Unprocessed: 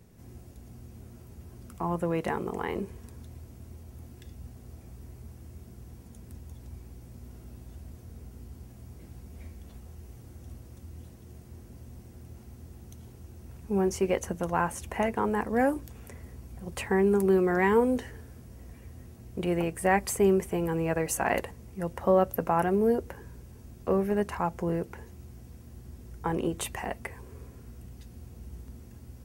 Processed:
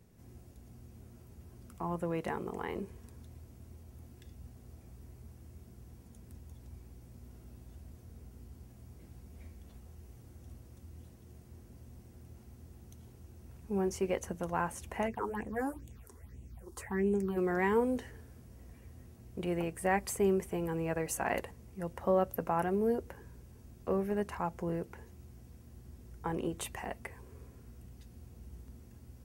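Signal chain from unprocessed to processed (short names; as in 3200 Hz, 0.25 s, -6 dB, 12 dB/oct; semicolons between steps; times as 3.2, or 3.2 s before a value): 15.07–17.36 phaser stages 6, 3 Hz -> 1.1 Hz, lowest notch 150–1400 Hz; gain -6 dB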